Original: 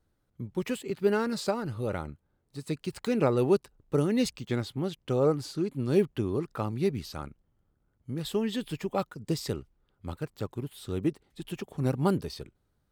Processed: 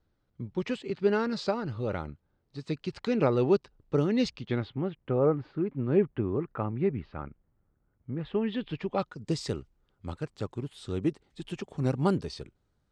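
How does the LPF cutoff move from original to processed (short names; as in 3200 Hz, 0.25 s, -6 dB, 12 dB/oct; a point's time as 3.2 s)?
LPF 24 dB/oct
4.27 s 5600 Hz
4.95 s 2300 Hz
8.18 s 2300 Hz
8.84 s 4200 Hz
9.33 s 8000 Hz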